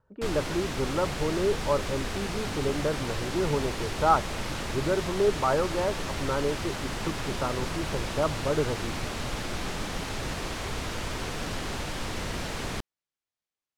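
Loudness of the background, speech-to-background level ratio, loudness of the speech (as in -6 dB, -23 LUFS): -33.5 LUFS, 3.5 dB, -30.0 LUFS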